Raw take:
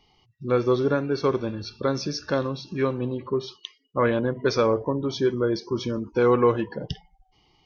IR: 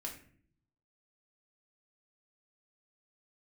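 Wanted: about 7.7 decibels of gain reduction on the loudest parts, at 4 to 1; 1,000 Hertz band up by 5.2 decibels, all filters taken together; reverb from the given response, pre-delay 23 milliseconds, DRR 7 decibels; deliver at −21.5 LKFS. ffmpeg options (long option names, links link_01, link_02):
-filter_complex "[0:a]equalizer=frequency=1000:width_type=o:gain=6,acompressor=threshold=-22dB:ratio=4,asplit=2[link_01][link_02];[1:a]atrim=start_sample=2205,adelay=23[link_03];[link_02][link_03]afir=irnorm=-1:irlink=0,volume=-5.5dB[link_04];[link_01][link_04]amix=inputs=2:normalize=0,volume=6dB"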